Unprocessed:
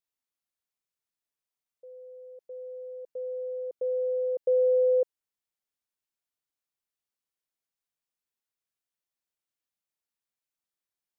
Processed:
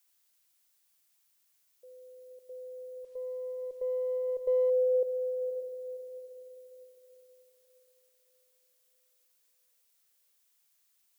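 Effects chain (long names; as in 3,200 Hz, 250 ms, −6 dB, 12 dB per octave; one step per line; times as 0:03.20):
feedback delay with all-pass diffusion 539 ms, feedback 42%, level −7 dB
background noise blue −66 dBFS
0:03.04–0:04.70: windowed peak hold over 3 samples
level −5.5 dB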